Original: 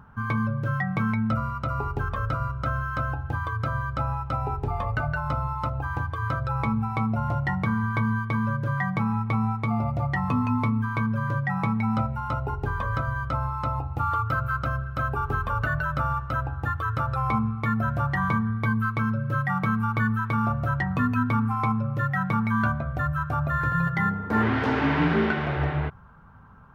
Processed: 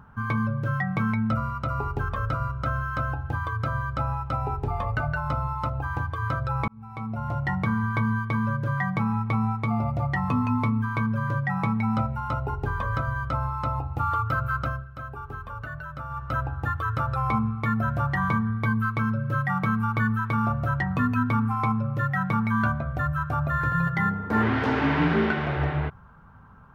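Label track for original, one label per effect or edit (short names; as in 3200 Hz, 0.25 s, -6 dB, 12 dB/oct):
6.680000	7.540000	fade in
14.640000	16.320000	dip -10 dB, fades 0.23 s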